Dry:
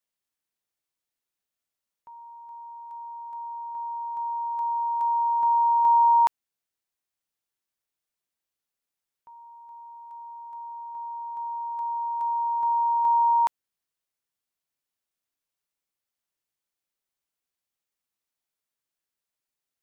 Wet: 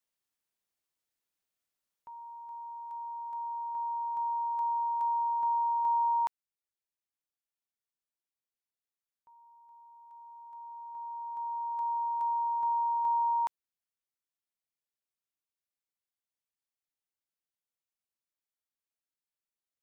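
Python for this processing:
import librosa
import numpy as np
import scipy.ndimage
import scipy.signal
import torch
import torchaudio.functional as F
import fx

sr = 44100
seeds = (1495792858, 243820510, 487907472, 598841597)

y = fx.rider(x, sr, range_db=5, speed_s=2.0)
y = F.gain(torch.from_numpy(y), -6.0).numpy()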